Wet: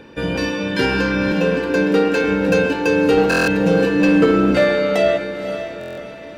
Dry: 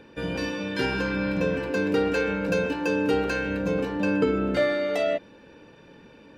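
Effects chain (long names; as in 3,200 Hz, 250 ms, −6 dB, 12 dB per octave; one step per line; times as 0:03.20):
0:01.32–0:02.24: elliptic high-pass filter 160 Hz
0:03.17–0:04.51: comb filter 6.2 ms, depth 82%
in parallel at −7.5 dB: wave folding −18 dBFS
on the sum: feedback delay with all-pass diffusion 532 ms, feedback 46%, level −9.5 dB
buffer that repeats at 0:03.29/0:05.79, samples 1,024, times 7
level +5 dB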